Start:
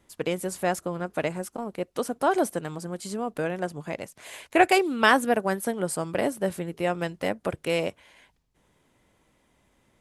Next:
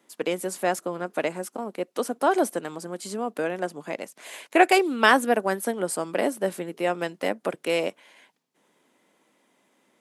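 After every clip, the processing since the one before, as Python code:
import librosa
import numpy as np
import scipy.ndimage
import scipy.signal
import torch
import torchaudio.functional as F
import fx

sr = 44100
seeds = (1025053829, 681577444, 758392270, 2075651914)

y = scipy.signal.sosfilt(scipy.signal.butter(4, 210.0, 'highpass', fs=sr, output='sos'), x)
y = F.gain(torch.from_numpy(y), 1.5).numpy()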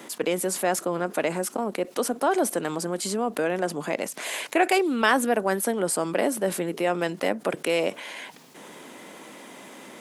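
y = fx.env_flatten(x, sr, amount_pct=50)
y = F.gain(torch.from_numpy(y), -5.0).numpy()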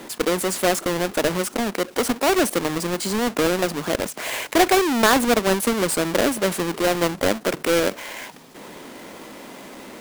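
y = fx.halfwave_hold(x, sr)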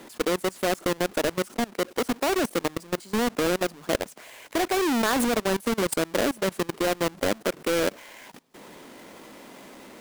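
y = fx.level_steps(x, sr, step_db=23)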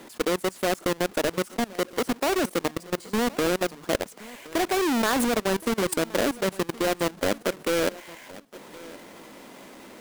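y = fx.echo_feedback(x, sr, ms=1070, feedback_pct=22, wet_db=-20)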